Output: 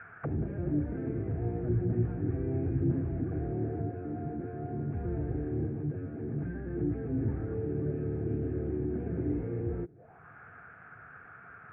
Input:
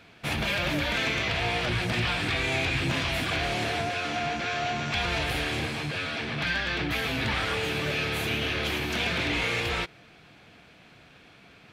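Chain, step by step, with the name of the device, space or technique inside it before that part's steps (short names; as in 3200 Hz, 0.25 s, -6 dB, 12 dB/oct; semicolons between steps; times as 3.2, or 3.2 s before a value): envelope filter bass rig (envelope low-pass 320–1600 Hz down, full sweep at -31 dBFS; speaker cabinet 60–2100 Hz, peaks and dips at 100 Hz +4 dB, 210 Hz -8 dB, 310 Hz -10 dB, 570 Hz -7 dB, 1000 Hz -8 dB, 1600 Hz +6 dB)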